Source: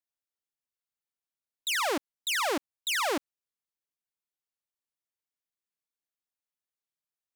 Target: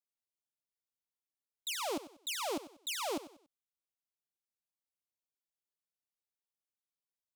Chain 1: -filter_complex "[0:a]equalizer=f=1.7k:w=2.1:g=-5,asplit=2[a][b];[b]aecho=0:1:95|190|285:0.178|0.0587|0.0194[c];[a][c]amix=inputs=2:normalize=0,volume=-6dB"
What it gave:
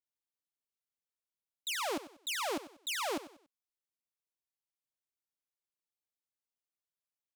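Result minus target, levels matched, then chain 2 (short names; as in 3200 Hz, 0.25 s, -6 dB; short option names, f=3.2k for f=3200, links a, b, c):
2000 Hz band +3.5 dB
-filter_complex "[0:a]equalizer=f=1.7k:w=2.1:g=-15,asplit=2[a][b];[b]aecho=0:1:95|190|285:0.178|0.0587|0.0194[c];[a][c]amix=inputs=2:normalize=0,volume=-6dB"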